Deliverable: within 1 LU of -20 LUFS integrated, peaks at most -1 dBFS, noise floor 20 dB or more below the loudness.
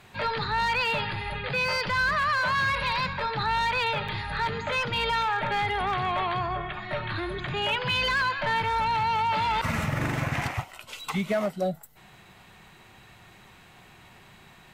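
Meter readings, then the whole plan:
clipped 1.1%; flat tops at -20.0 dBFS; dropouts 1; longest dropout 5.0 ms; loudness -26.5 LUFS; peak -20.0 dBFS; loudness target -20.0 LUFS
-> clip repair -20 dBFS; interpolate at 4.08, 5 ms; gain +6.5 dB

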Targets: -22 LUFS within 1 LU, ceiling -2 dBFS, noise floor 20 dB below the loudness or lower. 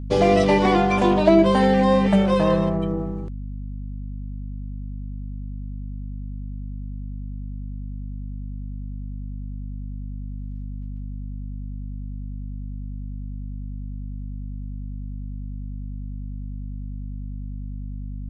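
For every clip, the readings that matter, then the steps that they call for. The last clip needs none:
hum 50 Hz; harmonics up to 250 Hz; hum level -29 dBFS; loudness -25.5 LUFS; peak -1.5 dBFS; loudness target -22.0 LUFS
-> de-hum 50 Hz, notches 5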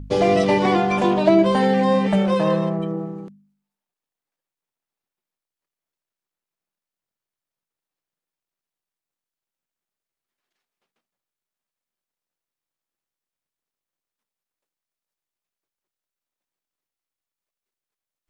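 hum none; loudness -18.5 LUFS; peak -1.5 dBFS; loudness target -22.0 LUFS
-> gain -3.5 dB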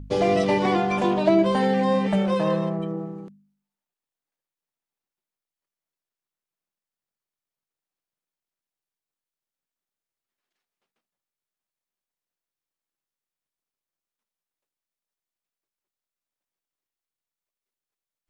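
loudness -22.0 LUFS; peak -5.0 dBFS; noise floor -92 dBFS

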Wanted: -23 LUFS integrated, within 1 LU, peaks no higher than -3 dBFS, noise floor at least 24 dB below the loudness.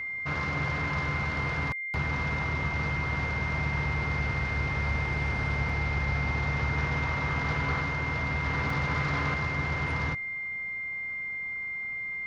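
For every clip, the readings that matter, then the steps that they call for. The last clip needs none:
dropouts 2; longest dropout 2.8 ms; steady tone 2100 Hz; tone level -32 dBFS; loudness -29.5 LUFS; peak -15.5 dBFS; loudness target -23.0 LUFS
-> interpolate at 5.69/8.7, 2.8 ms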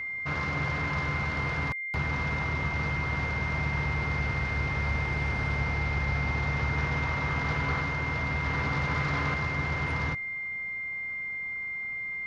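dropouts 0; steady tone 2100 Hz; tone level -32 dBFS
-> notch 2100 Hz, Q 30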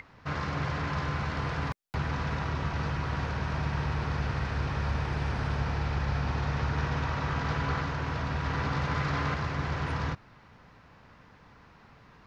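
steady tone none; loudness -31.5 LUFS; peak -17.0 dBFS; loudness target -23.0 LUFS
-> gain +8.5 dB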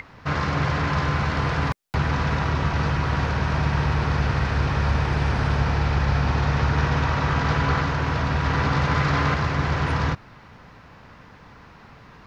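loudness -23.0 LUFS; peak -8.5 dBFS; noise floor -48 dBFS

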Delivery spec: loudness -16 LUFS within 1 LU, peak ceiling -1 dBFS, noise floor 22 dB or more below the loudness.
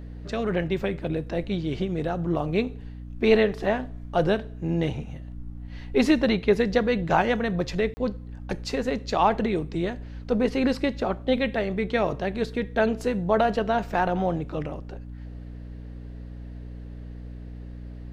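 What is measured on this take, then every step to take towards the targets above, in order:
dropouts 1; longest dropout 30 ms; hum 60 Hz; harmonics up to 300 Hz; hum level -36 dBFS; loudness -25.5 LUFS; peak -7.5 dBFS; loudness target -16.0 LUFS
-> interpolate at 7.94, 30 ms; de-hum 60 Hz, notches 5; gain +9.5 dB; limiter -1 dBFS

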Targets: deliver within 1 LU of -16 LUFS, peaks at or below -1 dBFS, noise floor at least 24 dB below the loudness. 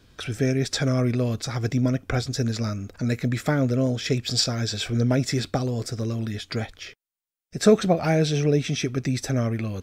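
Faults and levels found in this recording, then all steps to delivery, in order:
loudness -24.5 LUFS; peak -4.5 dBFS; loudness target -16.0 LUFS
-> gain +8.5 dB; limiter -1 dBFS

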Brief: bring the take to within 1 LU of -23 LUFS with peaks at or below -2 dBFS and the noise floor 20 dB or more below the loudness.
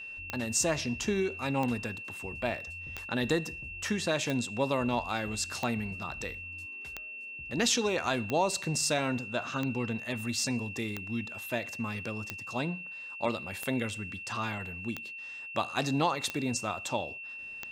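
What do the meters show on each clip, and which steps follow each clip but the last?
clicks 14; steady tone 2700 Hz; tone level -40 dBFS; loudness -32.5 LUFS; peak -14.5 dBFS; loudness target -23.0 LUFS
-> de-click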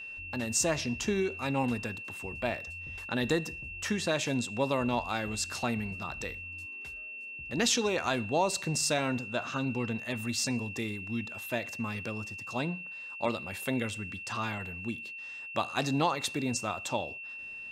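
clicks 0; steady tone 2700 Hz; tone level -40 dBFS
-> notch 2700 Hz, Q 30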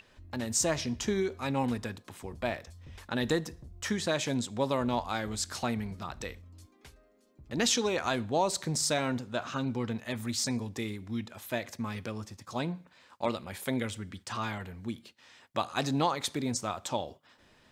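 steady tone none; loudness -32.5 LUFS; peak -14.5 dBFS; loudness target -23.0 LUFS
-> gain +9.5 dB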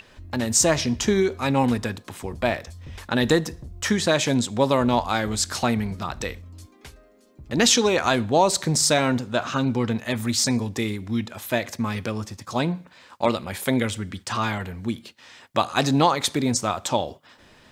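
loudness -23.0 LUFS; peak -5.0 dBFS; noise floor -54 dBFS

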